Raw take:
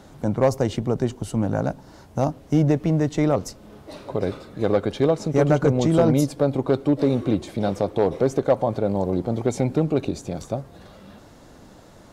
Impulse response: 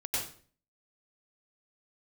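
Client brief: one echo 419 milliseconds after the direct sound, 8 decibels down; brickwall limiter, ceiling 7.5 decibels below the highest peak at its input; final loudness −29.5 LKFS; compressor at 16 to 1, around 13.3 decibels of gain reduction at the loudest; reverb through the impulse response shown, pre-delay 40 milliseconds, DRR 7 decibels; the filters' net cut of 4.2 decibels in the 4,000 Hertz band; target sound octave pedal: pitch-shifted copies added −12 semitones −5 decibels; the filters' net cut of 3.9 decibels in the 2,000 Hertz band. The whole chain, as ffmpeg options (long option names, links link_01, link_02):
-filter_complex "[0:a]equalizer=frequency=2000:width_type=o:gain=-4.5,equalizer=frequency=4000:width_type=o:gain=-4,acompressor=threshold=-27dB:ratio=16,alimiter=limit=-23dB:level=0:latency=1,aecho=1:1:419:0.398,asplit=2[link_01][link_02];[1:a]atrim=start_sample=2205,adelay=40[link_03];[link_02][link_03]afir=irnorm=-1:irlink=0,volume=-12dB[link_04];[link_01][link_04]amix=inputs=2:normalize=0,asplit=2[link_05][link_06];[link_06]asetrate=22050,aresample=44100,atempo=2,volume=-5dB[link_07];[link_05][link_07]amix=inputs=2:normalize=0,volume=3.5dB"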